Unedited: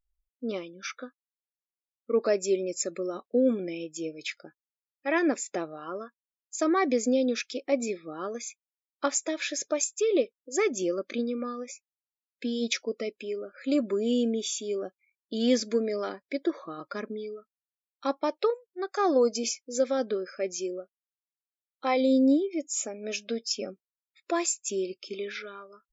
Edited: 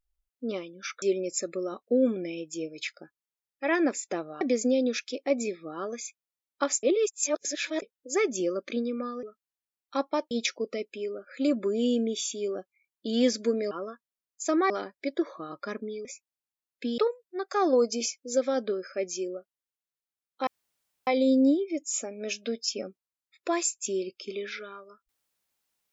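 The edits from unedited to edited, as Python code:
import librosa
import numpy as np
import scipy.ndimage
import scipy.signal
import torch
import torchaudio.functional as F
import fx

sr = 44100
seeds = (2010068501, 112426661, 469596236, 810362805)

y = fx.edit(x, sr, fx.cut(start_s=1.02, length_s=1.43),
    fx.move(start_s=5.84, length_s=0.99, to_s=15.98),
    fx.reverse_span(start_s=9.25, length_s=0.99),
    fx.swap(start_s=11.65, length_s=0.93, other_s=17.33, other_length_s=1.08),
    fx.insert_room_tone(at_s=21.9, length_s=0.6), tone=tone)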